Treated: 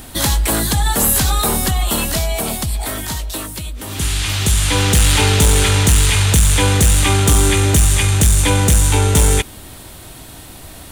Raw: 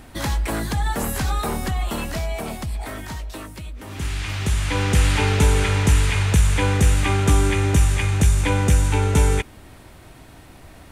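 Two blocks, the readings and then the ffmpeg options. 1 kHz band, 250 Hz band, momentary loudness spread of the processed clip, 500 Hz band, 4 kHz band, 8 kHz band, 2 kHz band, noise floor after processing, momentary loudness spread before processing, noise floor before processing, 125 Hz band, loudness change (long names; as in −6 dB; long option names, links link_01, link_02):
+5.0 dB, +4.5 dB, 10 LU, +5.0 dB, +11.0 dB, +13.5 dB, +5.0 dB, −36 dBFS, 14 LU, −45 dBFS, +4.5 dB, +6.5 dB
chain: -af "aexciter=amount=3.1:drive=2.2:freq=3100,aeval=exprs='0.668*(cos(1*acos(clip(val(0)/0.668,-1,1)))-cos(1*PI/2))+0.119*(cos(5*acos(clip(val(0)/0.668,-1,1)))-cos(5*PI/2))':channel_layout=same,volume=1dB"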